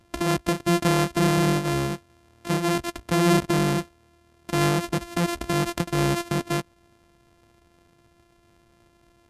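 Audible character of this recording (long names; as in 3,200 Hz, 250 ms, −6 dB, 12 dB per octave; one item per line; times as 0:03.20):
a buzz of ramps at a fixed pitch in blocks of 128 samples
MP2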